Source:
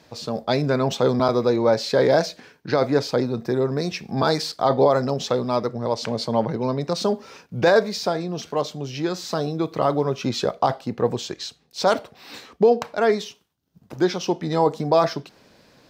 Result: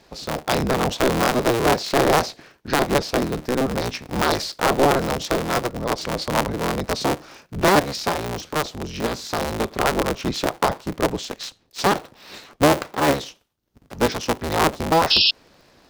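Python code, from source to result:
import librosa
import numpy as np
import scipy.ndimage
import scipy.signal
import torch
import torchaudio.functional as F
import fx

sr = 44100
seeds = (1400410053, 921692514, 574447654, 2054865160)

y = fx.cycle_switch(x, sr, every=3, mode='inverted')
y = fx.spec_paint(y, sr, seeds[0], shape='noise', start_s=15.1, length_s=0.21, low_hz=2500.0, high_hz=5500.0, level_db=-16.0)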